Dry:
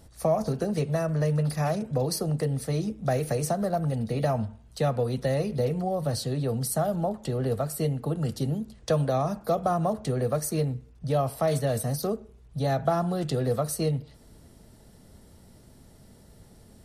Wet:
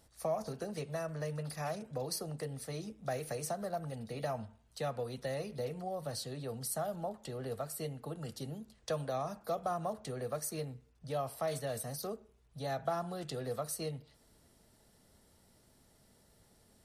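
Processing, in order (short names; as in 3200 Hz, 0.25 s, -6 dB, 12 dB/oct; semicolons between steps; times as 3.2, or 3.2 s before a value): low shelf 430 Hz -9.5 dB; gain -7 dB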